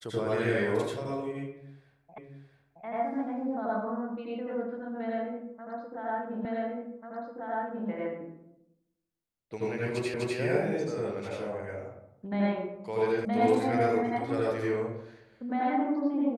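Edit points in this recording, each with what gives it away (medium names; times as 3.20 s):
2.18 s: repeat of the last 0.67 s
6.45 s: repeat of the last 1.44 s
10.14 s: repeat of the last 0.25 s
13.25 s: sound stops dead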